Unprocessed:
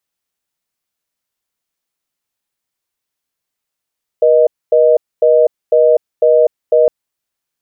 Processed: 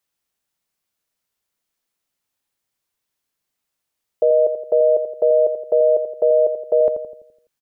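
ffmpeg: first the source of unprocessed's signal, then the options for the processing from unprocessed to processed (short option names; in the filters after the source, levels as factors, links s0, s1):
-f lavfi -i "aevalsrc='0.355*(sin(2*PI*480*t)+sin(2*PI*620*t))*clip(min(mod(t,0.5),0.25-mod(t,0.5))/0.005,0,1)':d=2.66:s=44100"
-filter_complex "[0:a]alimiter=limit=0.398:level=0:latency=1:release=254,asplit=2[s0][s1];[s1]adelay=84,lowpass=f=820:p=1,volume=0.473,asplit=2[s2][s3];[s3]adelay=84,lowpass=f=820:p=1,volume=0.55,asplit=2[s4][s5];[s5]adelay=84,lowpass=f=820:p=1,volume=0.55,asplit=2[s6][s7];[s7]adelay=84,lowpass=f=820:p=1,volume=0.55,asplit=2[s8][s9];[s9]adelay=84,lowpass=f=820:p=1,volume=0.55,asplit=2[s10][s11];[s11]adelay=84,lowpass=f=820:p=1,volume=0.55,asplit=2[s12][s13];[s13]adelay=84,lowpass=f=820:p=1,volume=0.55[s14];[s0][s2][s4][s6][s8][s10][s12][s14]amix=inputs=8:normalize=0"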